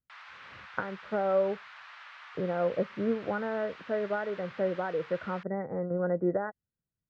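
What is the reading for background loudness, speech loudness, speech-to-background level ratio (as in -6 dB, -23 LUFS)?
-48.0 LUFS, -32.0 LUFS, 16.0 dB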